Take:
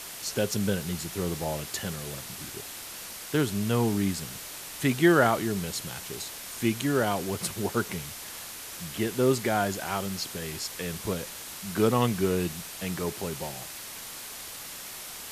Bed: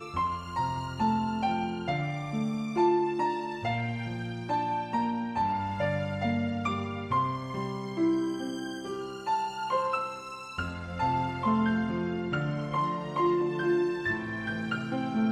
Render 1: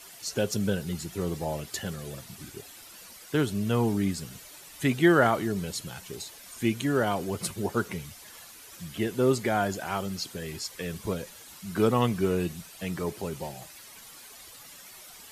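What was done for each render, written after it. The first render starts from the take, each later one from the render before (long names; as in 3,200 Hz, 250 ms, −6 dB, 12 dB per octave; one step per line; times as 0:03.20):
broadband denoise 11 dB, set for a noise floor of −41 dBFS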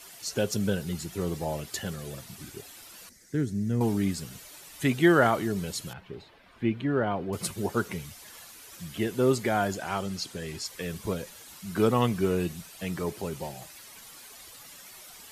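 0:03.09–0:03.81: drawn EQ curve 270 Hz 0 dB, 1,100 Hz −21 dB, 1,900 Hz −4 dB, 2,800 Hz −21 dB, 6,100 Hz −4 dB, 14,000 Hz −15 dB
0:05.93–0:07.33: high-frequency loss of the air 410 metres
0:09.75–0:10.66: low-pass filter 11,000 Hz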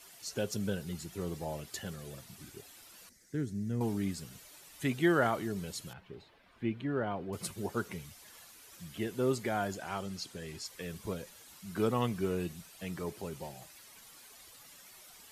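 level −7 dB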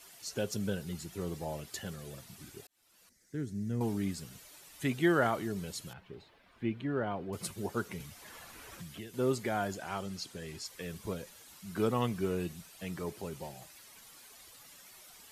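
0:02.67–0:03.63: fade in
0:08.00–0:09.14: multiband upward and downward compressor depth 100%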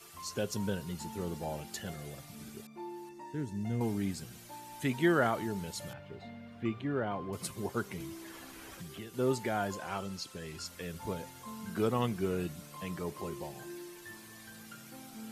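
mix in bed −19.5 dB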